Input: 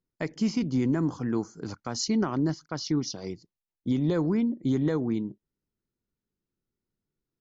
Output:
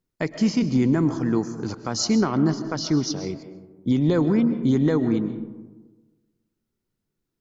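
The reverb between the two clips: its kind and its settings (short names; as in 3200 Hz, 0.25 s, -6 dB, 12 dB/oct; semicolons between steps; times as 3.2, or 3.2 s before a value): digital reverb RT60 1.3 s, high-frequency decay 0.35×, pre-delay 90 ms, DRR 10.5 dB; gain +5.5 dB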